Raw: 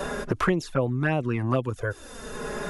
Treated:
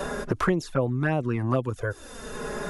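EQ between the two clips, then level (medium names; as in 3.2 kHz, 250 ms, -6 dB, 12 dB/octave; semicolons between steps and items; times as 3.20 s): dynamic bell 2.7 kHz, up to -5 dB, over -43 dBFS, Q 1.5; 0.0 dB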